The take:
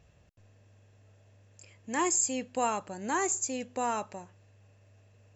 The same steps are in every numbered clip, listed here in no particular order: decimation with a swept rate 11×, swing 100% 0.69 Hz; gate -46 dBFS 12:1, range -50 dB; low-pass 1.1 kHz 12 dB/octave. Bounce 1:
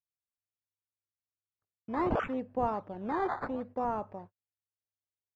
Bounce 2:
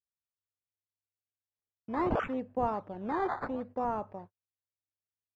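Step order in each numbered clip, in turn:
gate > decimation with a swept rate > low-pass; decimation with a swept rate > low-pass > gate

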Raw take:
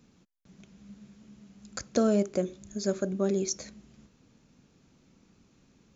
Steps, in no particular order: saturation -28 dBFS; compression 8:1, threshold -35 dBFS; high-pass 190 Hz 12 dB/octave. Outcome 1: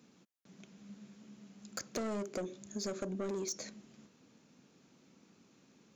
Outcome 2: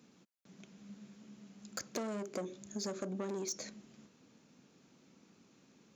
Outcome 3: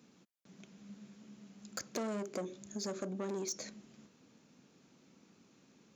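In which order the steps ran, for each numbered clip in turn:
high-pass > saturation > compression; saturation > high-pass > compression; saturation > compression > high-pass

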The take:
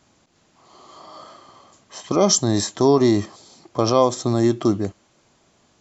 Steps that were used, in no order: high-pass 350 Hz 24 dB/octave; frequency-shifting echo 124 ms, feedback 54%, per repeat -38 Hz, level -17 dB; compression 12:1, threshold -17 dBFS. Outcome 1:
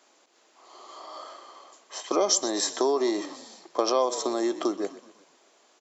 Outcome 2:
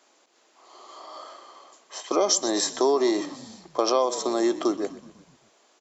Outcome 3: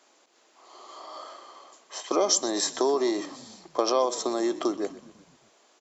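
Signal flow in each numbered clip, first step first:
frequency-shifting echo > compression > high-pass; high-pass > frequency-shifting echo > compression; compression > high-pass > frequency-shifting echo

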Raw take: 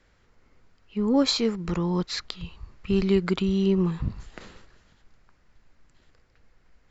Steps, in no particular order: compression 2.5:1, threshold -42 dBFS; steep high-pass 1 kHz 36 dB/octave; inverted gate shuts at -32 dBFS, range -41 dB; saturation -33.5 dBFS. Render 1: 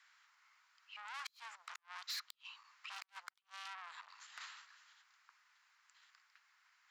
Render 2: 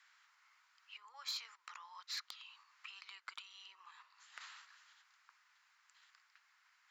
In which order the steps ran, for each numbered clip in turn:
saturation > steep high-pass > compression > inverted gate; compression > steep high-pass > saturation > inverted gate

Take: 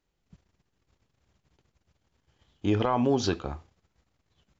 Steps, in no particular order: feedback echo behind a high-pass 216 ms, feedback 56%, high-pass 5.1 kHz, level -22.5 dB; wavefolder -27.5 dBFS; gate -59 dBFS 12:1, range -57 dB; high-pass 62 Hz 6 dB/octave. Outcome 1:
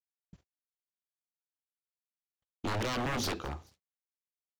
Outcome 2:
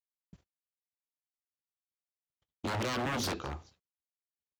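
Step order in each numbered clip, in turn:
high-pass > wavefolder > feedback echo behind a high-pass > gate; feedback echo behind a high-pass > wavefolder > gate > high-pass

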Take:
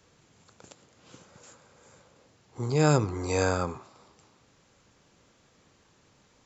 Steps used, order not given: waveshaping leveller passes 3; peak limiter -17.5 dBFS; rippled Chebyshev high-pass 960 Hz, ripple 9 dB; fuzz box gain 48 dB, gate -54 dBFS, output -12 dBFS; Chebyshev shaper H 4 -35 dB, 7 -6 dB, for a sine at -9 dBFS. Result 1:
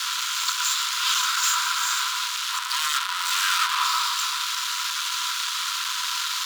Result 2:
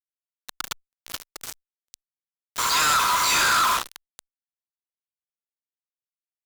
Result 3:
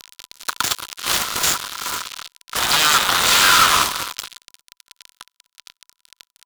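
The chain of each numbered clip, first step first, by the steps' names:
peak limiter > Chebyshev shaper > waveshaping leveller > fuzz box > rippled Chebyshev high-pass; waveshaping leveller > rippled Chebyshev high-pass > fuzz box > Chebyshev shaper > peak limiter; peak limiter > fuzz box > rippled Chebyshev high-pass > waveshaping leveller > Chebyshev shaper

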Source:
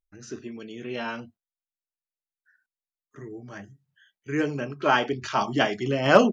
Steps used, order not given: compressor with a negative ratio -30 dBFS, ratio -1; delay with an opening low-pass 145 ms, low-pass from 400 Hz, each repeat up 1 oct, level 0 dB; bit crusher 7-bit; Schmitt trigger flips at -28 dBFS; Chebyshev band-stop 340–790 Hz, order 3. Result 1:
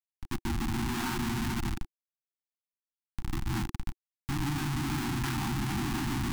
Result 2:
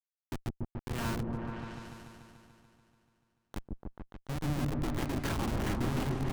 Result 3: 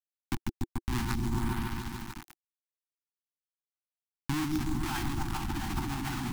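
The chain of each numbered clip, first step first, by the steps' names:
compressor with a negative ratio > delay with an opening low-pass > Schmitt trigger > bit crusher > Chebyshev band-stop; Chebyshev band-stop > bit crusher > compressor with a negative ratio > Schmitt trigger > delay with an opening low-pass; Schmitt trigger > delay with an opening low-pass > bit crusher > compressor with a negative ratio > Chebyshev band-stop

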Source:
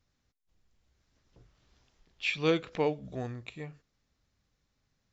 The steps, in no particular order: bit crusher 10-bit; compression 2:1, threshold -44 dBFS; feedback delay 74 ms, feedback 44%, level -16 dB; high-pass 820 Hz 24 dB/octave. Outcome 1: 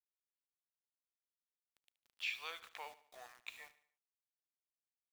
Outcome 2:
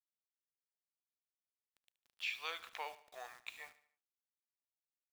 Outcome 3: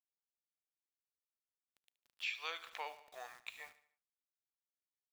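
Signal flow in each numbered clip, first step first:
compression > high-pass > bit crusher > feedback delay; high-pass > compression > bit crusher > feedback delay; high-pass > bit crusher > feedback delay > compression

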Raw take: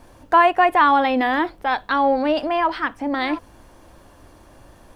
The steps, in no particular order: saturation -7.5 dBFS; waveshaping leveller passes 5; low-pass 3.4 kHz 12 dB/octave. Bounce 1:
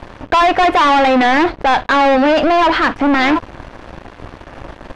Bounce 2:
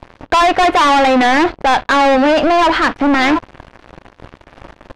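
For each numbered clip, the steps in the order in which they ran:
saturation > waveshaping leveller > low-pass; waveshaping leveller > low-pass > saturation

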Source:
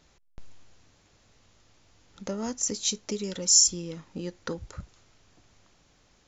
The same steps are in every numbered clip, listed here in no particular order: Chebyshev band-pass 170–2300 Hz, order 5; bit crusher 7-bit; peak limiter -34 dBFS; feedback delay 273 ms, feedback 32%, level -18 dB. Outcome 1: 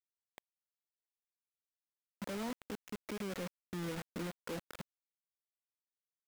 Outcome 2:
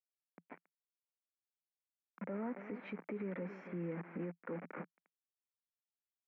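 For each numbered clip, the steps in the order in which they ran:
Chebyshev band-pass > peak limiter > feedback delay > bit crusher; feedback delay > bit crusher > Chebyshev band-pass > peak limiter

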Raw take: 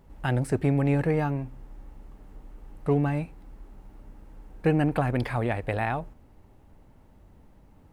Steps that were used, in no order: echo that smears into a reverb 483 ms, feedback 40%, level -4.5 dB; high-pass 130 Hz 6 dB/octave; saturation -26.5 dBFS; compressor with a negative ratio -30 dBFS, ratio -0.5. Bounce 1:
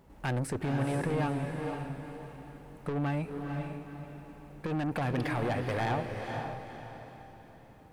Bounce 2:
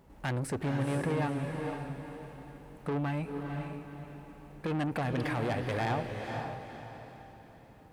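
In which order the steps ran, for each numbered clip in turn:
high-pass > saturation > compressor with a negative ratio > echo that smears into a reverb; saturation > high-pass > compressor with a negative ratio > echo that smears into a reverb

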